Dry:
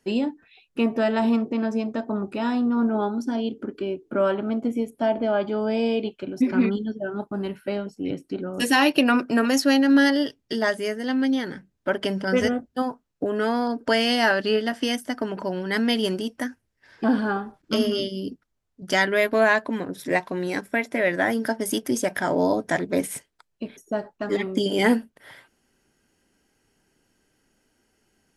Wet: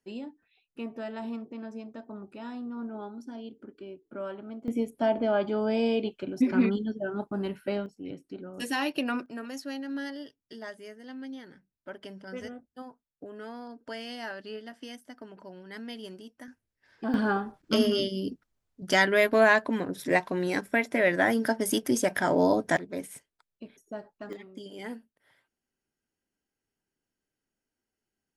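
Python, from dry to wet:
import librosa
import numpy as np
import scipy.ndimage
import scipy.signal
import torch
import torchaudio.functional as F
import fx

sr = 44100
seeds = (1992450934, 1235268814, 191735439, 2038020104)

y = fx.gain(x, sr, db=fx.steps((0.0, -15.0), (4.68, -3.0), (7.86, -11.0), (9.26, -18.0), (16.48, -10.0), (17.14, -1.5), (22.77, -12.0), (24.33, -20.0)))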